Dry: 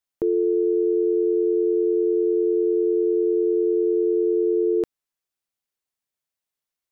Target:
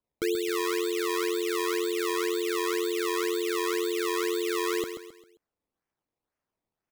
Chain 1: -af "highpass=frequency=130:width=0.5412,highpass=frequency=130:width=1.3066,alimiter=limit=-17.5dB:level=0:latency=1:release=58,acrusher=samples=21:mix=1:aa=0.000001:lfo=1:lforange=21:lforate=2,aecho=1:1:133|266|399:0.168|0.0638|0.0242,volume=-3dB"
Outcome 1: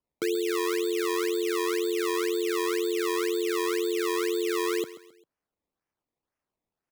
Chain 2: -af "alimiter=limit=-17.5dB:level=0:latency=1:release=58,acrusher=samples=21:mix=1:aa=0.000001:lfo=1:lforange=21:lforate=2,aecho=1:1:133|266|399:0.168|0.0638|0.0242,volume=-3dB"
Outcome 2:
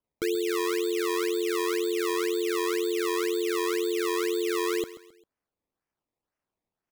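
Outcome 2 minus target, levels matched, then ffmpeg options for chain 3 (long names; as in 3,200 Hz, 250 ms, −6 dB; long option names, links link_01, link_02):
echo-to-direct −7 dB
-af "alimiter=limit=-17.5dB:level=0:latency=1:release=58,acrusher=samples=21:mix=1:aa=0.000001:lfo=1:lforange=21:lforate=2,aecho=1:1:133|266|399|532:0.376|0.143|0.0543|0.0206,volume=-3dB"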